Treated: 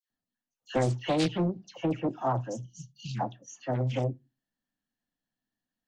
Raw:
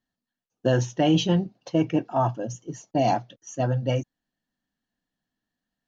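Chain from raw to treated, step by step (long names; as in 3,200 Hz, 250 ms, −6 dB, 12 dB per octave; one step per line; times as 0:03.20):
time-frequency box erased 0:02.53–0:03.12, 220–2,800 Hz
all-pass dispersion lows, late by 104 ms, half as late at 1,600 Hz
on a send at −15 dB: convolution reverb RT60 0.25 s, pre-delay 4 ms
on the sum: highs frequency-modulated by the lows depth 0.58 ms
level −5.5 dB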